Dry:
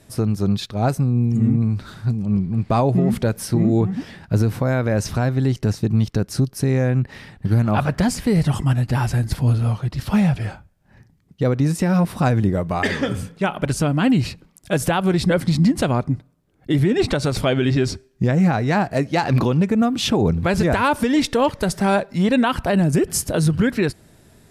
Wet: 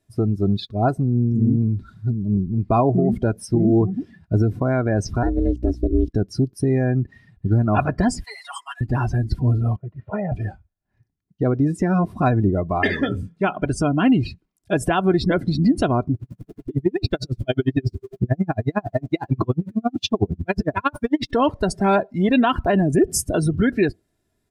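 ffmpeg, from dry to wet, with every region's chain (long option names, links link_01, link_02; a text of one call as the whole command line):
ffmpeg -i in.wav -filter_complex "[0:a]asettb=1/sr,asplit=3[link_01][link_02][link_03];[link_01]atrim=end=5.234[link_04];[link_02]atrim=start=5.23:end=6.09,asetpts=PTS-STARTPTS,afade=type=in:duration=0.004:curve=qsin,afade=type=out:start_time=0.856:duration=0.004:curve=qsin,aeval=exprs='val(0)*sin(2*PI*180*n/s)':channel_layout=same,aeval=exprs='val(0)+0.0178*(sin(2*PI*60*n/s)+sin(2*PI*2*60*n/s)/2+sin(2*PI*3*60*n/s)/3+sin(2*PI*4*60*n/s)/4+sin(2*PI*5*60*n/s)/5)':channel_layout=same[link_05];[link_03]atrim=start=6.086[link_06];[link_04][link_05]acrossfade=duration=0.004:curve1=hsin:curve2=qsin[link_07];[link_07][link_06]acrossfade=duration=0.004:curve1=qsin:curve2=hsin,asettb=1/sr,asplit=3[link_08][link_09][link_10];[link_08]atrim=end=8.244[link_11];[link_09]atrim=start=8.24:end=8.81,asetpts=PTS-STARTPTS,afade=type=in:duration=0.004:curve=qsin,afade=type=out:start_time=0.566:duration=0.004:curve=qsin,highpass=frequency=860:width=0.5412,highpass=frequency=860:width=1.3066,equalizer=frequency=8900:width_type=o:width=1.4:gain=5.5,aecho=1:1:7.1:0.58,atrim=end_sample=25137[link_12];[link_10]atrim=start=8.806[link_13];[link_11][link_12]acrossfade=duration=0.004:curve1=hsin:curve2=qsin[link_14];[link_14][link_13]acrossfade=duration=0.004:curve1=qsin:curve2=hsin,asettb=1/sr,asplit=3[link_15][link_16][link_17];[link_15]atrim=end=9.764[link_18];[link_16]atrim=start=9.76:end=10.32,asetpts=PTS-STARTPTS,afade=type=in:duration=0.004:curve=qsin,afade=type=out:start_time=0.556:duration=0.004:curve=qsin,agate=range=-33dB:threshold=-31dB:ratio=3:release=100:detection=peak,highpass=190,equalizer=frequency=210:width_type=q:width=4:gain=-4,equalizer=frequency=340:width_type=q:width=4:gain=-7,equalizer=frequency=650:width_type=q:width=4:gain=7,equalizer=frequency=950:width_type=q:width=4:gain=-7,equalizer=frequency=1400:width_type=q:width=4:gain=-4,lowpass=frequency=2000:width=0.5412,lowpass=frequency=2000:width=1.3066,aecho=1:1:2.1:0.48,atrim=end_sample=24696[link_19];[link_17]atrim=start=10.316[link_20];[link_18][link_19]acrossfade=duration=0.004:curve1=hsin:curve2=qsin[link_21];[link_21][link_20]acrossfade=duration=0.004:curve1=qsin:curve2=hsin,asettb=1/sr,asplit=3[link_22][link_23][link_24];[link_22]atrim=end=16.144[link_25];[link_23]atrim=start=16.14:end=21.31,asetpts=PTS-STARTPTS,afade=type=in:duration=0.004:curve=qsin,afade=type=out:start_time=5.166:duration=0.004:curve=qsin,aeval=exprs='val(0)+0.5*0.0531*sgn(val(0))':channel_layout=same,equalizer=frequency=120:width=4.4:gain=7.5,aeval=exprs='val(0)*pow(10,-38*(0.5-0.5*cos(2*PI*11*n/s))/20)':channel_layout=same[link_26];[link_24]atrim=start=21.306[link_27];[link_25][link_26]acrossfade=duration=0.004:curve1=hsin:curve2=qsin[link_28];[link_28][link_27]acrossfade=duration=0.004:curve1=qsin:curve2=hsin,afftdn=noise_reduction=22:noise_floor=-28,equalizer=frequency=190:width_type=o:width=0.29:gain=4,aecho=1:1:2.9:0.48" out.wav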